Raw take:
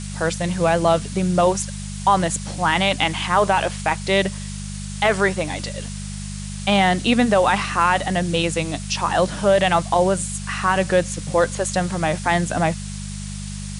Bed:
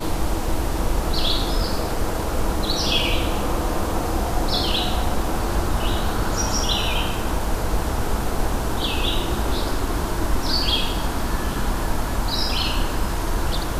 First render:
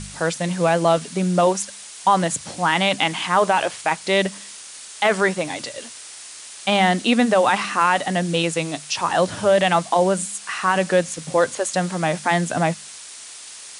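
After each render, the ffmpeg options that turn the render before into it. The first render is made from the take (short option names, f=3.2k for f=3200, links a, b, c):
-af "bandreject=f=50:t=h:w=4,bandreject=f=100:t=h:w=4,bandreject=f=150:t=h:w=4,bandreject=f=200:t=h:w=4"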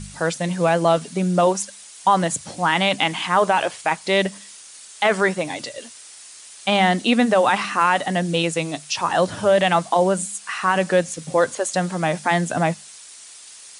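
-af "afftdn=nr=6:nf=-39"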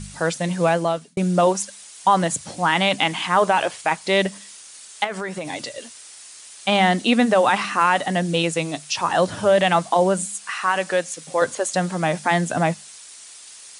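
-filter_complex "[0:a]asettb=1/sr,asplit=3[a][b][c];[a]atrim=end=5.044[d];[b]atrim=start=5.04:end=5.53,asetpts=PTS-STARTPTS,afade=t=in:d=0.004:c=qsin,afade=t=out:st=0.486:d=0.004:c=qsin,acompressor=threshold=-24dB:ratio=6:attack=3.2:release=140:knee=1:detection=peak[e];[c]atrim=start=5.526[f];[d][e]acrossfade=d=0.004:c1=hsin:c2=qsin[g];[g][f]acrossfade=d=0.004:c1=qsin:c2=hsin,asettb=1/sr,asplit=3[h][i][j];[h]atrim=end=10.504[k];[i]atrim=start=10.5:end=11.42,asetpts=PTS-STARTPTS,afade=t=in:d=0.004:c=qsin,afade=t=out:st=0.916:d=0.004:c=qsin,highpass=f=590:p=1[l];[j]atrim=start=11.416[m];[k][l]acrossfade=d=0.004:c1=hsin:c2=qsin[n];[n][m]acrossfade=d=0.004:c1=qsin:c2=hsin,asplit=2[o][p];[o]atrim=end=1.17,asetpts=PTS-STARTPTS,afade=t=out:st=0.68:d=0.49[q];[p]atrim=start=1.17,asetpts=PTS-STARTPTS,afade=t=in:d=0.004:c=hsin[r];[q][r]concat=n=2:v=0:a=1"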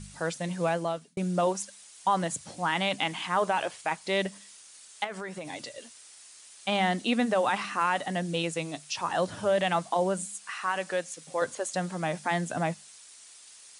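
-af "volume=-9dB"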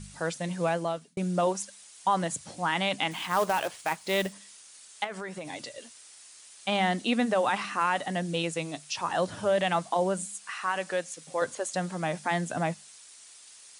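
-filter_complex "[0:a]asettb=1/sr,asplit=3[a][b][c];[a]atrim=end=3.114[d];[b]atrim=start=3.11:end=4.33,asetpts=PTS-STARTPTS,afade=t=in:d=0.004:c=qsin,afade=t=out:st=1.216:d=0.004:c=qsin,acrusher=bits=3:mode=log:mix=0:aa=0.000001[e];[c]atrim=start=4.326[f];[d][e]acrossfade=d=0.004:c1=hsin:c2=qsin[g];[g][f]acrossfade=d=0.004:c1=qsin:c2=hsin"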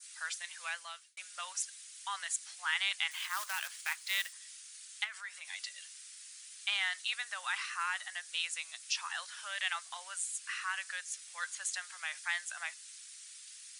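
-af "highpass=f=1.5k:w=0.5412,highpass=f=1.5k:w=1.3066,adynamicequalizer=threshold=0.00562:dfrequency=2700:dqfactor=1.2:tfrequency=2700:tqfactor=1.2:attack=5:release=100:ratio=0.375:range=3:mode=cutabove:tftype=bell"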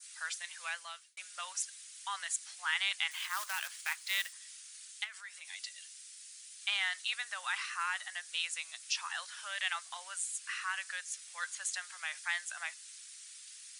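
-filter_complex "[0:a]asettb=1/sr,asplit=3[a][b][c];[a]atrim=end=4.914[d];[b]atrim=start=4.91:end=6.62,asetpts=PTS-STARTPTS,afade=t=in:d=0.004:c=qsin,afade=t=out:st=1.706:d=0.004:c=qsin,equalizer=f=950:w=0.49:g=-5.5[e];[c]atrim=start=6.616[f];[d][e]acrossfade=d=0.004:c1=hsin:c2=qsin[g];[g][f]acrossfade=d=0.004:c1=qsin:c2=hsin"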